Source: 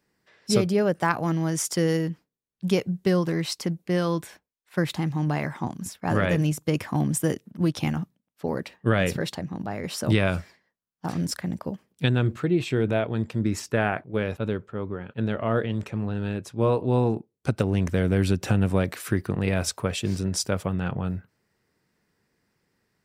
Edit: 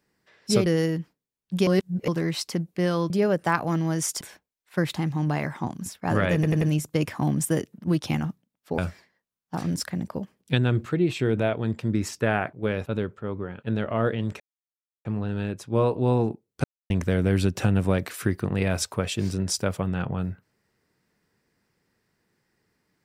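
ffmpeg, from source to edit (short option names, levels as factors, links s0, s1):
-filter_complex "[0:a]asplit=13[s0][s1][s2][s3][s4][s5][s6][s7][s8][s9][s10][s11][s12];[s0]atrim=end=0.662[s13];[s1]atrim=start=1.768:end=2.782[s14];[s2]atrim=start=2.778:end=3.192,asetpts=PTS-STARTPTS,areverse[s15];[s3]atrim=start=3.188:end=4.212[s16];[s4]atrim=start=0.658:end=1.772[s17];[s5]atrim=start=4.208:end=6.432[s18];[s6]atrim=start=6.338:end=6.432[s19];[s7]atrim=start=6.338:end=6.432[s20];[s8]atrim=start=6.338:end=8.512[s21];[s9]atrim=start=10.288:end=15.91,asetpts=PTS-STARTPTS,afade=t=out:st=5.618:d=0.004:c=hsin,apad=pad_dur=0.65[s22];[s10]atrim=start=15.91:end=17.5,asetpts=PTS-STARTPTS,afade=t=in:d=0.004:c=hsin,afade=t=out:st=1.586:d=0.004:c=hsin[s23];[s11]atrim=start=17.5:end=17.76,asetpts=PTS-STARTPTS,volume=0[s24];[s12]atrim=start=17.76,asetpts=PTS-STARTPTS,afade=t=in:d=0.004:c=hsin[s25];[s13][s14]acrossfade=d=0.004:c1=hsin:c2=hsin[s26];[s26][s15]acrossfade=d=0.004:c1=hsin:c2=hsin[s27];[s27][s16]acrossfade=d=0.004:c1=hsin:c2=hsin[s28];[s28][s17]acrossfade=d=0.004:c1=hsin:c2=hsin[s29];[s29][s18]acrossfade=d=0.004:c1=hsin:c2=hsin[s30];[s30][s19]acrossfade=d=0.004:c1=hsin:c2=hsin[s31];[s31][s20]acrossfade=d=0.004:c1=hsin:c2=hsin[s32];[s32][s21]acrossfade=d=0.004:c1=hsin:c2=hsin[s33];[s22][s23][s24][s25]concat=n=4:v=0:a=1[s34];[s33][s34]acrossfade=d=0.004:c1=hsin:c2=hsin"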